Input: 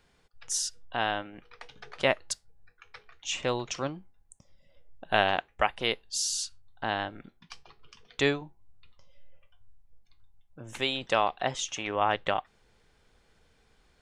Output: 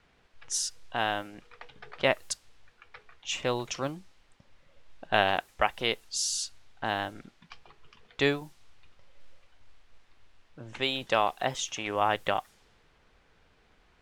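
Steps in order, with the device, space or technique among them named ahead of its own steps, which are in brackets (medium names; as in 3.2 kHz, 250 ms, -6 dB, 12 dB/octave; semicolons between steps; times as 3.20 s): cassette deck with a dynamic noise filter (white noise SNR 27 dB; level-controlled noise filter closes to 2.5 kHz, open at -27 dBFS)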